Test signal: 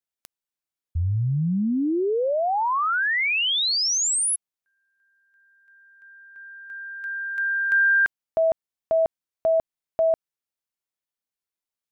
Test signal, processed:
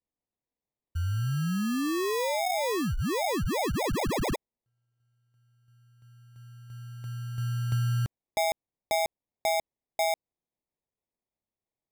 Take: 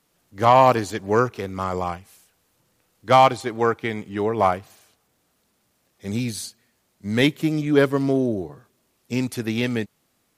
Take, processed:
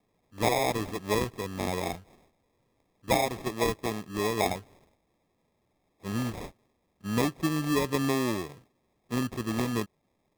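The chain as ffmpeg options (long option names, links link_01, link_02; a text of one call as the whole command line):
ffmpeg -i in.wav -af "acompressor=threshold=-20dB:ratio=10:attack=54:release=228:knee=1:detection=peak,acrusher=samples=30:mix=1:aa=0.000001,volume=-5.5dB" out.wav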